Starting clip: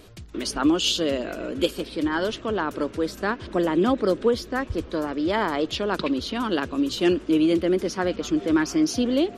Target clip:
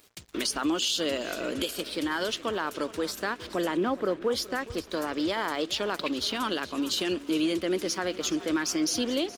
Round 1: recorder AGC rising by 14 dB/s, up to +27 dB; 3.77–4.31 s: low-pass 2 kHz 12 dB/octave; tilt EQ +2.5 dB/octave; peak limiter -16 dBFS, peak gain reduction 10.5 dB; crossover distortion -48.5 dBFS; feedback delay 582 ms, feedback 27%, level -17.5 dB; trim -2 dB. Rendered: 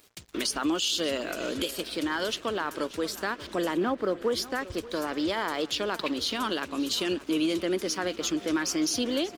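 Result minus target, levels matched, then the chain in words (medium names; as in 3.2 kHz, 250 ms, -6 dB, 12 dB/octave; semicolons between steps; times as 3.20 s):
echo 163 ms late
recorder AGC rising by 14 dB/s, up to +27 dB; 3.77–4.31 s: low-pass 2 kHz 12 dB/octave; tilt EQ +2.5 dB/octave; peak limiter -16 dBFS, peak gain reduction 10.5 dB; crossover distortion -48.5 dBFS; feedback delay 419 ms, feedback 27%, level -17.5 dB; trim -2 dB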